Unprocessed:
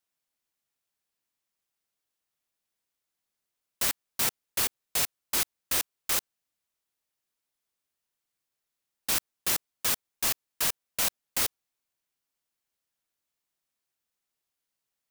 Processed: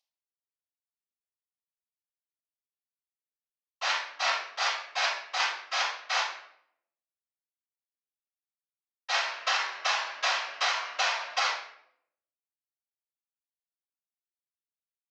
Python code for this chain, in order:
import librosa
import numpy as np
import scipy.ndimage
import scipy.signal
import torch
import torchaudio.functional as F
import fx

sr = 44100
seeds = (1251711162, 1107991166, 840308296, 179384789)

y = fx.cvsd(x, sr, bps=32000)
y = scipy.signal.sosfilt(scipy.signal.butter(4, 790.0, 'highpass', fs=sr, output='sos'), y)
y = fx.room_shoebox(y, sr, seeds[0], volume_m3=140.0, walls='mixed', distance_m=5.4)
y = fx.band_squash(y, sr, depth_pct=100, at=(9.14, 11.4))
y = y * 10.0 ** (-4.5 / 20.0)